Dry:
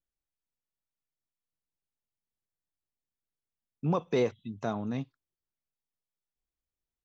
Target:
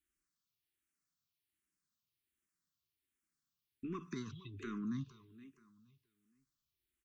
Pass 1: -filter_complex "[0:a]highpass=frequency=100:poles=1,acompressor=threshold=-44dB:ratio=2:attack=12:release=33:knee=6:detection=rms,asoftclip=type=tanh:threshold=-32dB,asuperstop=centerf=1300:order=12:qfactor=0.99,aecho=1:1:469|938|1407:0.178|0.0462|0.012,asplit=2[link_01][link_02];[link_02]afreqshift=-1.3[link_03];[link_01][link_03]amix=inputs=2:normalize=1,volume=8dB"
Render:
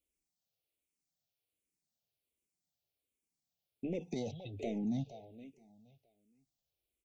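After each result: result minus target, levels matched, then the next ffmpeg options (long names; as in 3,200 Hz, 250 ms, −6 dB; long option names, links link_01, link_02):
500 Hz band +5.5 dB; downward compressor: peak gain reduction −4.5 dB
-filter_complex "[0:a]highpass=frequency=100:poles=1,acompressor=threshold=-44dB:ratio=2:attack=12:release=33:knee=6:detection=rms,asoftclip=type=tanh:threshold=-32dB,asuperstop=centerf=650:order=12:qfactor=0.99,aecho=1:1:469|938|1407:0.178|0.0462|0.012,asplit=2[link_01][link_02];[link_02]afreqshift=-1.3[link_03];[link_01][link_03]amix=inputs=2:normalize=1,volume=8dB"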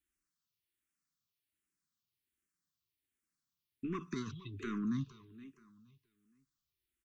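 downward compressor: peak gain reduction −4.5 dB
-filter_complex "[0:a]highpass=frequency=100:poles=1,acompressor=threshold=-53.5dB:ratio=2:attack=12:release=33:knee=6:detection=rms,asoftclip=type=tanh:threshold=-32dB,asuperstop=centerf=650:order=12:qfactor=0.99,aecho=1:1:469|938|1407:0.178|0.0462|0.012,asplit=2[link_01][link_02];[link_02]afreqshift=-1.3[link_03];[link_01][link_03]amix=inputs=2:normalize=1,volume=8dB"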